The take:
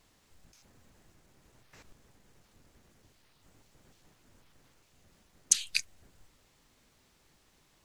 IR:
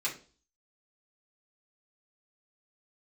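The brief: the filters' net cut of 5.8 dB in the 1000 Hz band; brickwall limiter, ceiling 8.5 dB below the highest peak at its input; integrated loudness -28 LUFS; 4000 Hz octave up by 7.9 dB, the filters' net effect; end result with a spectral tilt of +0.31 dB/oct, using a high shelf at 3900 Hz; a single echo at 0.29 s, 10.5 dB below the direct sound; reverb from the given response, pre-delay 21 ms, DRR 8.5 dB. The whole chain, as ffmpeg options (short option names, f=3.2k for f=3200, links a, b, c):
-filter_complex "[0:a]equalizer=f=1k:t=o:g=-9,highshelf=f=3.9k:g=3.5,equalizer=f=4k:t=o:g=7.5,alimiter=limit=-5dB:level=0:latency=1,aecho=1:1:290:0.299,asplit=2[a][b];[1:a]atrim=start_sample=2205,adelay=21[c];[b][c]afir=irnorm=-1:irlink=0,volume=-13.5dB[d];[a][d]amix=inputs=2:normalize=0,volume=0.5dB"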